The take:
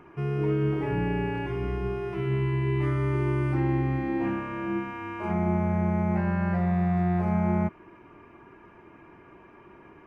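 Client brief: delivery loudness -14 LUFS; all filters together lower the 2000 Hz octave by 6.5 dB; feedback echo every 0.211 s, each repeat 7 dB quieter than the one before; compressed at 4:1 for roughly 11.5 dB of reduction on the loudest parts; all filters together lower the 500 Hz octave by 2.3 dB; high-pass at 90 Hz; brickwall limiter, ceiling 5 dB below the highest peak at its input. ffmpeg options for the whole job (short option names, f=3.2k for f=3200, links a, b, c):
-af "highpass=90,equalizer=f=500:t=o:g=-3,equalizer=f=2k:t=o:g=-8,acompressor=threshold=-37dB:ratio=4,alimiter=level_in=8.5dB:limit=-24dB:level=0:latency=1,volume=-8.5dB,aecho=1:1:211|422|633|844|1055:0.447|0.201|0.0905|0.0407|0.0183,volume=26dB"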